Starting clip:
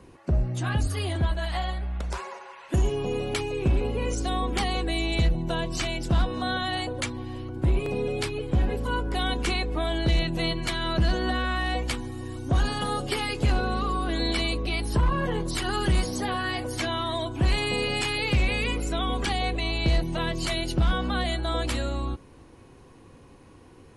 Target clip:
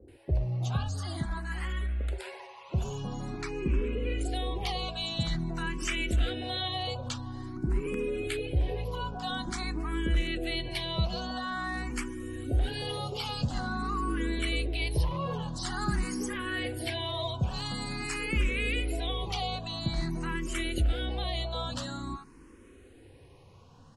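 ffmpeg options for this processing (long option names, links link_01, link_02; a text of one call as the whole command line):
ffmpeg -i in.wav -filter_complex "[0:a]asettb=1/sr,asplit=3[link_01][link_02][link_03];[link_01]atrim=end=3.224[link_04];[link_02]atrim=start=3.22:end=4.13,asetpts=PTS-STARTPTS,afade=type=in:duration=0.004:curve=qsin,afade=type=out:start_time=0.906:duration=0.004:curve=qsin,lowpass=5000[link_05];[link_03]atrim=start=4.126[link_06];[link_04][link_05]acrossfade=duration=0.004:curve1=hsin:curve2=qsin[link_07];[link_07][link_06]acrossfade=duration=0.004:curve1=qsin:curve2=hsin,asettb=1/sr,asplit=3[link_08][link_09][link_10];[link_08]atrim=end=4.804[link_11];[link_09]atrim=start=4.8:end=6.6,asetpts=PTS-STARTPTS,afade=type=in:duration=0.004:curve=qsin,afade=type=out:start_time=1.796:duration=0.004:curve=qsin,equalizer=frequency=2800:width_type=o:width=1.8:gain=6[link_12];[link_10]atrim=start=6.596[link_13];[link_11][link_12]acrossfade=duration=0.004:curve1=hsin:curve2=qsin[link_14];[link_14][link_13]acrossfade=duration=0.004:curve1=qsin:curve2=hsin,asplit=2[link_15][link_16];[link_16]alimiter=limit=-23.5dB:level=0:latency=1,volume=-1dB[link_17];[link_15][link_17]amix=inputs=2:normalize=0,acrossover=split=710[link_18][link_19];[link_19]adelay=80[link_20];[link_18][link_20]amix=inputs=2:normalize=0,asplit=2[link_21][link_22];[link_22]afreqshift=0.48[link_23];[link_21][link_23]amix=inputs=2:normalize=1,volume=-5.5dB" out.wav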